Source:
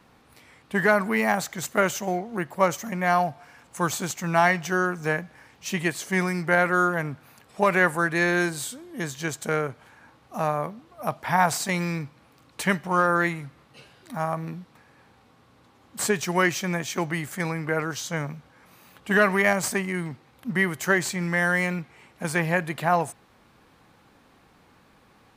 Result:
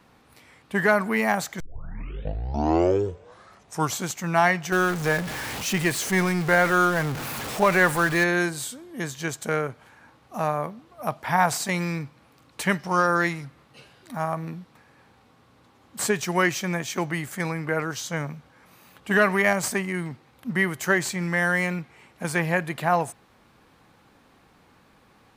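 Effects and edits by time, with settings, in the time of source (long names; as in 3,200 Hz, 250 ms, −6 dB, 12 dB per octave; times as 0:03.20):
0:01.60: tape start 2.47 s
0:04.72–0:08.24: converter with a step at zero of −27 dBFS
0:12.79–0:13.45: parametric band 5,200 Hz +14.5 dB 0.41 octaves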